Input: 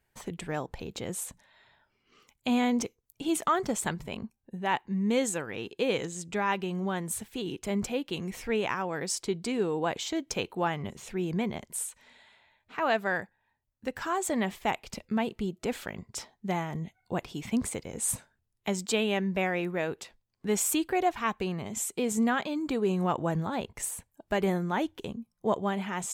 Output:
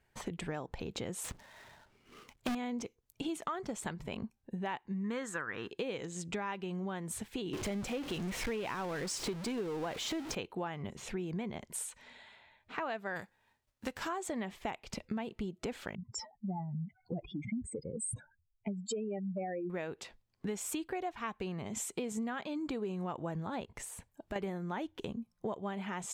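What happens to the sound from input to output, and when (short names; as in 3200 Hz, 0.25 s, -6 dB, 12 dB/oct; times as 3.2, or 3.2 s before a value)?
1.24–2.55 half-waves squared off
5.04–5.71 band shelf 1400 Hz +12.5 dB 1.1 oct
7.53–10.35 zero-crossing step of -30.5 dBFS
13.15–14.07 spectral whitening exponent 0.6
15.95–19.7 spectral contrast raised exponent 3.5
23.64–24.36 compressor 2:1, threshold -45 dBFS
whole clip: high shelf 8900 Hz -11 dB; compressor 6:1, threshold -38 dBFS; gain +2.5 dB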